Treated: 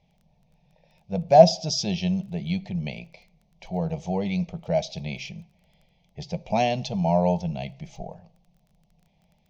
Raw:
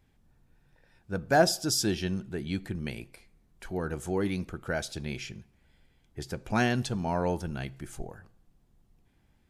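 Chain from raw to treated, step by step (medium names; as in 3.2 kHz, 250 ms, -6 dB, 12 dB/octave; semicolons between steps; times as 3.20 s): FFT filter 120 Hz 0 dB, 170 Hz +15 dB, 310 Hz -10 dB, 620 Hz +15 dB, 890 Hz +8 dB, 1.5 kHz -18 dB, 2.2 kHz +7 dB, 3.5 kHz +7 dB, 6.2 kHz +5 dB, 9 kHz -30 dB; crackle 13 per s -44 dBFS; trim -3 dB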